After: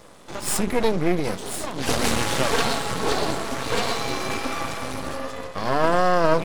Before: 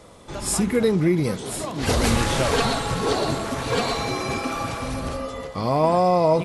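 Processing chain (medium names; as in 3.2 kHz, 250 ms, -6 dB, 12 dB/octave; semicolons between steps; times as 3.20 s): high-pass 170 Hz 6 dB/octave; half-wave rectifier; trim +4 dB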